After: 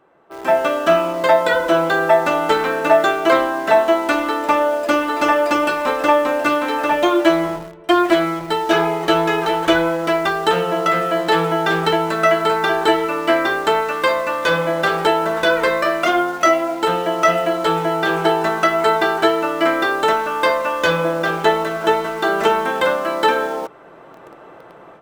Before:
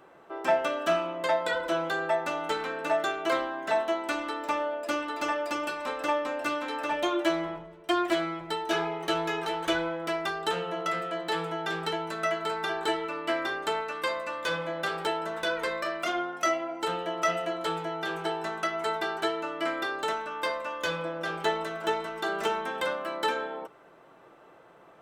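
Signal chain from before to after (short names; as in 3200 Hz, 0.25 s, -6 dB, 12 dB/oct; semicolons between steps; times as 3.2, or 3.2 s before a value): AGC gain up to 15.5 dB; high shelf 3000 Hz -7.5 dB; in parallel at -9.5 dB: bit-crush 5-bit; on the sum: gain -1.5 dB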